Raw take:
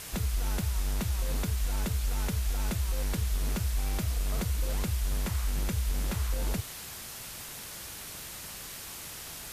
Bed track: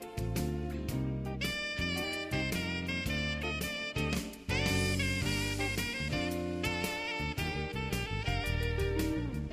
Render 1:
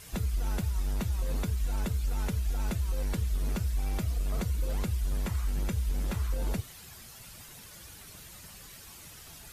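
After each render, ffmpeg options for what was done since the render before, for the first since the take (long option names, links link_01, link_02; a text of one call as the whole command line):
ffmpeg -i in.wav -af "afftdn=noise_reduction=10:noise_floor=-43" out.wav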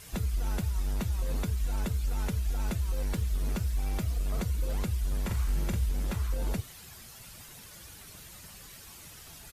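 ffmpeg -i in.wav -filter_complex "[0:a]asettb=1/sr,asplit=3[link_01][link_02][link_03];[link_01]atrim=end=2.894[link_04];[link_02]atrim=start=2.89:end=4.36,asetpts=PTS-STARTPTS,afade=type=in:duration=0.004:curve=qsin,afade=type=out:start_time=1.466:duration=0.004:curve=qsin,aeval=exprs='val(0)*gte(abs(val(0)),0.00224)':channel_layout=same[link_05];[link_03]atrim=start=4.356[link_06];[link_04][link_05]acrossfade=duration=0.004:curve1=hsin:curve2=qsin[link_07];[link_07][link_06]acrossfade=duration=0.004:curve1=qsin:curve2=hsin,asplit=3[link_08][link_09][link_10];[link_08]afade=type=out:start_time=5.28:duration=0.02[link_11];[link_09]asplit=2[link_12][link_13];[link_13]adelay=47,volume=-5dB[link_14];[link_12][link_14]amix=inputs=2:normalize=0,afade=type=in:start_time=5.28:duration=0.02,afade=type=out:start_time=5.85:duration=0.02[link_15];[link_10]afade=type=in:start_time=5.85:duration=0.02[link_16];[link_11][link_15][link_16]amix=inputs=3:normalize=0" out.wav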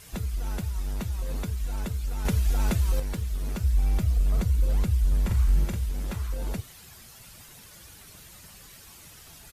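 ffmpeg -i in.wav -filter_complex "[0:a]asettb=1/sr,asplit=3[link_01][link_02][link_03];[link_01]atrim=end=2.254[link_04];[link_02]atrim=start=2.25:end=3,asetpts=PTS-STARTPTS,afade=type=in:duration=0.004:curve=qsin,afade=type=out:start_time=0.746:duration=0.004:curve=qsin,acontrast=70[link_05];[link_03]atrim=start=2.996[link_06];[link_04][link_05]acrossfade=duration=0.004:curve1=hsin:curve2=qsin[link_07];[link_07][link_06]acrossfade=duration=0.004:curve1=qsin:curve2=hsin,asettb=1/sr,asplit=3[link_08][link_09][link_10];[link_08]atrim=end=3.634[link_11];[link_09]atrim=start=3.63:end=5.65,asetpts=PTS-STARTPTS,afade=type=in:duration=0.004:curve=qsin,afade=type=out:start_time=2.016:duration=0.004:curve=qsin,lowshelf=frequency=160:gain=8.5[link_12];[link_10]atrim=start=5.646[link_13];[link_11][link_12]acrossfade=duration=0.004:curve1=hsin:curve2=qsin[link_14];[link_14][link_13]acrossfade=duration=0.004:curve1=qsin:curve2=hsin" out.wav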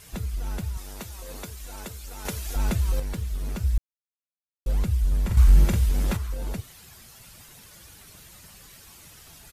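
ffmpeg -i in.wav -filter_complex "[0:a]asettb=1/sr,asplit=3[link_01][link_02][link_03];[link_01]atrim=end=0.774[link_04];[link_02]atrim=start=0.77:end=2.56,asetpts=PTS-STARTPTS,afade=type=in:duration=0.004:curve=qsin,afade=type=out:start_time=1.786:duration=0.004:curve=qsin,bass=frequency=250:gain=-11,treble=frequency=4000:gain=4[link_05];[link_03]atrim=start=2.556[link_06];[link_04][link_05]acrossfade=duration=0.004:curve1=hsin:curve2=qsin[link_07];[link_07][link_06]acrossfade=duration=0.004:curve1=qsin:curve2=hsin,asettb=1/sr,asplit=3[link_08][link_09][link_10];[link_08]atrim=end=5.374[link_11];[link_09]atrim=start=5.37:end=6.17,asetpts=PTS-STARTPTS,afade=type=in:duration=0.004:curve=qsin,afade=type=out:start_time=0.796:duration=0.004:curve=qsin,acontrast=90[link_12];[link_10]atrim=start=6.166[link_13];[link_11][link_12]acrossfade=duration=0.004:curve1=hsin:curve2=qsin[link_14];[link_14][link_13]acrossfade=duration=0.004:curve1=qsin:curve2=hsin,asplit=3[link_15][link_16][link_17];[link_15]atrim=end=3.78,asetpts=PTS-STARTPTS,afade=type=out:start_time=3.776:duration=0.004:curve=hsin[link_18];[link_16]atrim=start=3.78:end=4.66,asetpts=PTS-STARTPTS,volume=0[link_19];[link_17]atrim=start=4.66,asetpts=PTS-STARTPTS,afade=type=in:duration=0.004:curve=hsin[link_20];[link_18][link_19][link_20]concat=n=3:v=0:a=1" out.wav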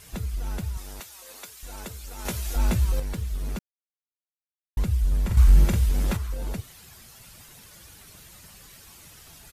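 ffmpeg -i in.wav -filter_complex "[0:a]asettb=1/sr,asplit=3[link_01][link_02][link_03];[link_01]atrim=end=1.004[link_04];[link_02]atrim=start=1:end=1.63,asetpts=PTS-STARTPTS,afade=type=in:duration=0.004:curve=qsin,afade=type=out:start_time=0.626:duration=0.004:curve=qsin,highpass=frequency=1200:poles=1[link_05];[link_03]atrim=start=1.626[link_06];[link_04][link_05]acrossfade=duration=0.004:curve1=hsin:curve2=qsin[link_07];[link_07][link_06]acrossfade=duration=0.004:curve1=qsin:curve2=hsin,asettb=1/sr,asplit=3[link_08][link_09][link_10];[link_08]atrim=end=2.174[link_11];[link_09]atrim=start=2.17:end=2.85,asetpts=PTS-STARTPTS,afade=type=in:duration=0.004:curve=qsin,afade=type=out:start_time=0.676:duration=0.004:curve=qsin,asplit=2[link_12][link_13];[link_13]adelay=17,volume=-5.5dB[link_14];[link_12][link_14]amix=inputs=2:normalize=0,atrim=end_sample=29988[link_15];[link_10]atrim=start=2.846[link_16];[link_11][link_15]acrossfade=duration=0.004:curve1=hsin:curve2=qsin[link_17];[link_17][link_16]acrossfade=duration=0.004:curve1=qsin:curve2=hsin,asplit=3[link_18][link_19][link_20];[link_18]atrim=end=3.59,asetpts=PTS-STARTPTS,afade=type=out:start_time=3.586:duration=0.004:curve=hsin[link_21];[link_19]atrim=start=3.59:end=4.77,asetpts=PTS-STARTPTS,volume=0[link_22];[link_20]atrim=start=4.77,asetpts=PTS-STARTPTS,afade=type=in:duration=0.004:curve=hsin[link_23];[link_21][link_22][link_23]concat=n=3:v=0:a=1" out.wav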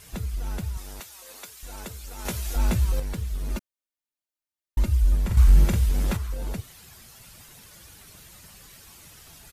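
ffmpeg -i in.wav -filter_complex "[0:a]asettb=1/sr,asplit=3[link_01][link_02][link_03];[link_01]atrim=end=3.504[link_04];[link_02]atrim=start=3.5:end=5.15,asetpts=PTS-STARTPTS,afade=type=in:duration=0.004:curve=qsin,afade=type=out:start_time=1.646:duration=0.004:curve=qsin,aecho=1:1:3.3:0.65,atrim=end_sample=72765[link_05];[link_03]atrim=start=5.146[link_06];[link_04][link_05]acrossfade=duration=0.004:curve1=hsin:curve2=qsin[link_07];[link_07][link_06]acrossfade=duration=0.004:curve1=qsin:curve2=hsin" out.wav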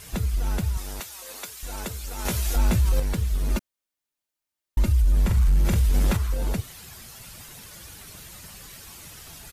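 ffmpeg -i in.wav -af "acontrast=29,alimiter=limit=-14dB:level=0:latency=1:release=36" out.wav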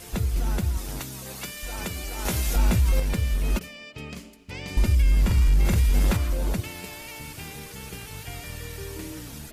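ffmpeg -i in.wav -i bed.wav -filter_complex "[1:a]volume=-5dB[link_01];[0:a][link_01]amix=inputs=2:normalize=0" out.wav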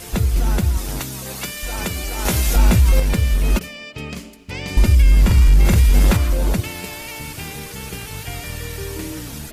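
ffmpeg -i in.wav -af "volume=7.5dB" out.wav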